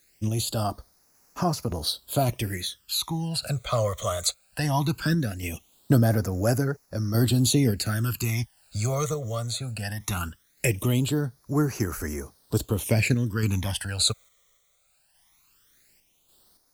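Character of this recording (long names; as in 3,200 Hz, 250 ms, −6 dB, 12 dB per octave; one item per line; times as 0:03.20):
a quantiser's noise floor 10 bits, dither triangular
phaser sweep stages 12, 0.19 Hz, lowest notch 270–3,300 Hz
sample-and-hold tremolo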